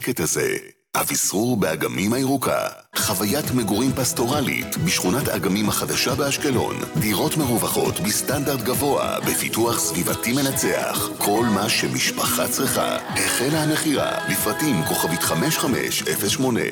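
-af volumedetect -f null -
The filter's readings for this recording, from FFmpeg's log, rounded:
mean_volume: -21.5 dB
max_volume: -10.1 dB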